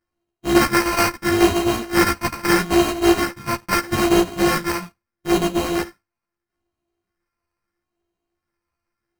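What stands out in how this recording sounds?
a buzz of ramps at a fixed pitch in blocks of 128 samples; phasing stages 4, 0.77 Hz, lowest notch 470–1600 Hz; aliases and images of a low sample rate 3500 Hz, jitter 0%; a shimmering, thickened sound

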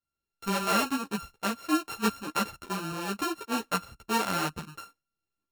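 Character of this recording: a buzz of ramps at a fixed pitch in blocks of 32 samples; tremolo saw up 2.4 Hz, depth 40%; a shimmering, thickened sound

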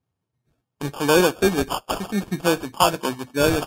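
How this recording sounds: aliases and images of a low sample rate 2000 Hz, jitter 0%; Vorbis

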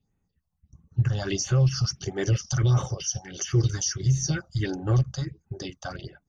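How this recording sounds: phasing stages 4, 1.5 Hz, lowest notch 350–4900 Hz

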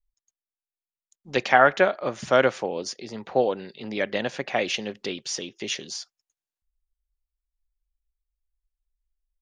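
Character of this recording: noise floor -95 dBFS; spectral tilt -3.5 dB/oct

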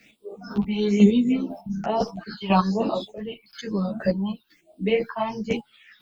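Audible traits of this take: a quantiser's noise floor 12-bit, dither triangular; phasing stages 6, 1.1 Hz, lowest notch 440–1800 Hz; chopped level 2 Hz, depth 60%, duty 20%; a shimmering, thickened sound

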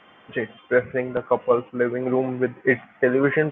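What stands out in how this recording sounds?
noise floor -53 dBFS; spectral tilt -2.5 dB/oct

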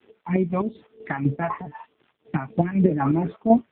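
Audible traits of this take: phasing stages 2, 3.2 Hz, lowest notch 350–1400 Hz; a quantiser's noise floor 10-bit, dither none; chopped level 4 Hz, depth 60%, duty 45%; AMR-NB

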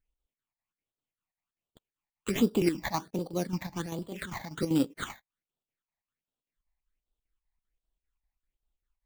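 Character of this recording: aliases and images of a low sample rate 5200 Hz, jitter 0%; phasing stages 8, 1.3 Hz, lowest notch 390–2000 Hz; chopped level 5.1 Hz, depth 60%, duty 70%

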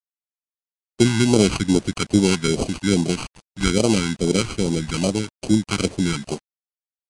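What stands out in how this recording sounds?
aliases and images of a low sample rate 1800 Hz, jitter 0%; phasing stages 2, 2.4 Hz, lowest notch 520–1600 Hz; a quantiser's noise floor 8-bit, dither none; Vorbis

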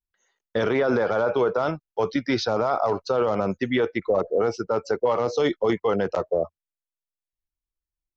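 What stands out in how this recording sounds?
noise floor -92 dBFS; spectral tilt -4.5 dB/oct

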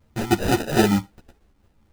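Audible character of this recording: phasing stages 12, 3.8 Hz, lowest notch 460–1700 Hz; aliases and images of a low sample rate 1100 Hz, jitter 0%; a shimmering, thickened sound

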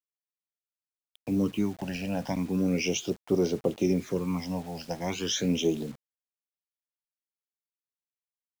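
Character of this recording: phasing stages 12, 0.37 Hz, lowest notch 360–2500 Hz; a quantiser's noise floor 8-bit, dither none

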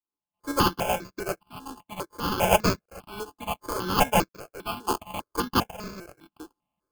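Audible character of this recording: a buzz of ramps at a fixed pitch in blocks of 16 samples; tremolo saw up 0.7 Hz, depth 95%; aliases and images of a low sample rate 1900 Hz, jitter 0%; notches that jump at a steady rate 5 Hz 590–3000 Hz

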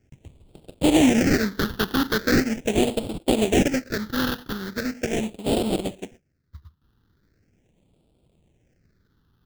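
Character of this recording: aliases and images of a low sample rate 1100 Hz, jitter 20%; phasing stages 6, 0.4 Hz, lowest notch 600–1700 Hz

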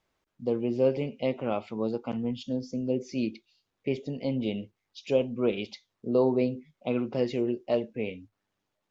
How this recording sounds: noise floor -82 dBFS; spectral tilt -6.0 dB/oct

